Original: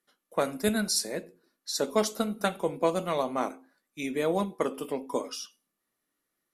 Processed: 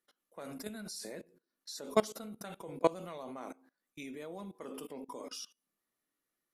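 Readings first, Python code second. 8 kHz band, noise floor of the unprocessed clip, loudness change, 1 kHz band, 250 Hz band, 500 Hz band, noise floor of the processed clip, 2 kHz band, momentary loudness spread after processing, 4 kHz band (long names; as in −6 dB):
−13.0 dB, −83 dBFS, −10.0 dB, −9.0 dB, −11.0 dB, −8.5 dB, below −85 dBFS, −12.0 dB, 17 LU, −12.0 dB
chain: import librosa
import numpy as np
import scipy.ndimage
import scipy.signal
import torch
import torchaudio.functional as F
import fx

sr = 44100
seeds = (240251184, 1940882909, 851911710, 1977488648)

y = fx.level_steps(x, sr, step_db=22)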